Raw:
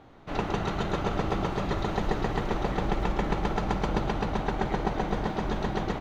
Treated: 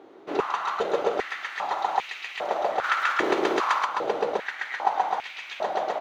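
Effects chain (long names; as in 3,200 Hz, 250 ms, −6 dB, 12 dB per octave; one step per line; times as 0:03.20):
0:02.83–0:03.83: ceiling on every frequency bin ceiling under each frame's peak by 18 dB
high-pass on a step sequencer 2.5 Hz 370–2,400 Hz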